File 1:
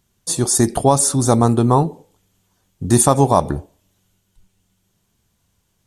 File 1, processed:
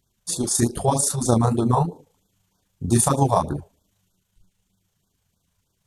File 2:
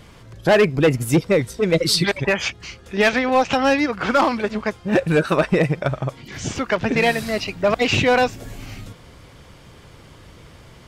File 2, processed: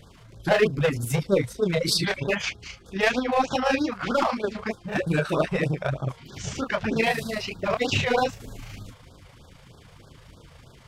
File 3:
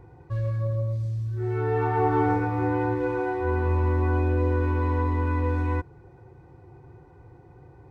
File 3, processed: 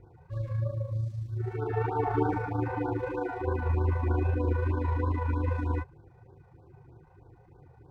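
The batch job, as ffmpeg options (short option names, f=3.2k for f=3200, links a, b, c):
-af "flanger=delay=20:depth=6.9:speed=2.5,tremolo=f=27:d=0.4,afftfilt=real='re*(1-between(b*sr/1024,250*pow(2400/250,0.5+0.5*sin(2*PI*3.2*pts/sr))/1.41,250*pow(2400/250,0.5+0.5*sin(2*PI*3.2*pts/sr))*1.41))':imag='im*(1-between(b*sr/1024,250*pow(2400/250,0.5+0.5*sin(2*PI*3.2*pts/sr))/1.41,250*pow(2400/250,0.5+0.5*sin(2*PI*3.2*pts/sr))*1.41))':win_size=1024:overlap=0.75"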